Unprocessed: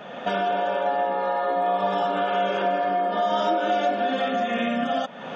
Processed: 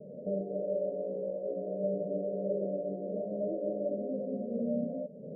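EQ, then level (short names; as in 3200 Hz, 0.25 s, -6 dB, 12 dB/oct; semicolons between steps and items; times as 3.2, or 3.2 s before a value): rippled Chebyshev low-pass 620 Hz, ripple 9 dB; 0.0 dB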